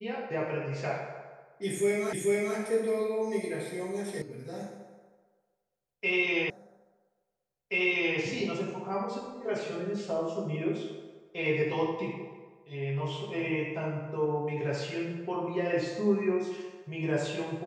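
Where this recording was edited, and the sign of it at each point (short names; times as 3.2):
2.13 repeat of the last 0.44 s
4.22 sound cut off
6.5 repeat of the last 1.68 s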